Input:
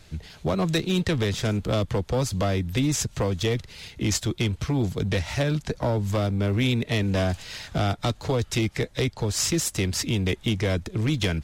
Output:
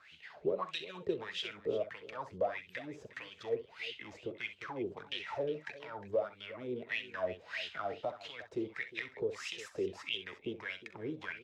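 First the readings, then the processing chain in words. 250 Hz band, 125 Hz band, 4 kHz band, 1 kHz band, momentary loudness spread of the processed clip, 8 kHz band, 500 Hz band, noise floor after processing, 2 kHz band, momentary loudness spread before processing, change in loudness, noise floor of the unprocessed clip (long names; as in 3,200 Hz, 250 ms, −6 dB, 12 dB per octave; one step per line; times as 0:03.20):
−19.0 dB, −30.0 dB, −12.5 dB, −10.0 dB, 9 LU, below −25 dB, −9.0 dB, −60 dBFS, −8.5 dB, 4 LU, −14.0 dB, −50 dBFS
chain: dynamic equaliser 750 Hz, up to −6 dB, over −49 dBFS, Q 7.4
downward compressor 3 to 1, threshold −31 dBFS, peak gain reduction 8.5 dB
LFO wah 1.6 Hz 400–3,100 Hz, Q 8.1
multi-tap delay 44/64/357 ms −16.5/−13.5/−17 dB
level +9 dB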